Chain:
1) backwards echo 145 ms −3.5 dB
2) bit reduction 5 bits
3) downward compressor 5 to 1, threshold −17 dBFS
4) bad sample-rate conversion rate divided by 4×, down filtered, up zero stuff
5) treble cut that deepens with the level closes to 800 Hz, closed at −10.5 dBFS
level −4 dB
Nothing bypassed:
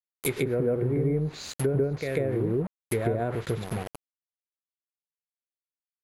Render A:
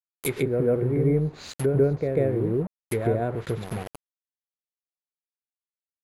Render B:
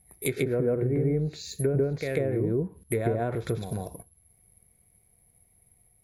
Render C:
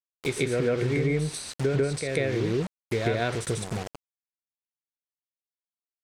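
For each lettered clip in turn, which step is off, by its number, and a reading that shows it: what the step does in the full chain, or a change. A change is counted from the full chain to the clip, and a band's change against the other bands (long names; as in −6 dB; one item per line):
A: 3, average gain reduction 2.0 dB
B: 2, distortion level −15 dB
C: 4, 2 kHz band +5.0 dB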